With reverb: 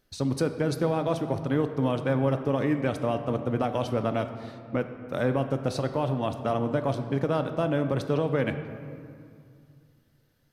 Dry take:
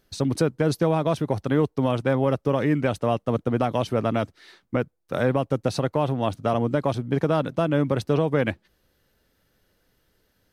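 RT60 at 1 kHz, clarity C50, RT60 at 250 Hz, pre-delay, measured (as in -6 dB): 2.3 s, 9.5 dB, 2.8 s, 3 ms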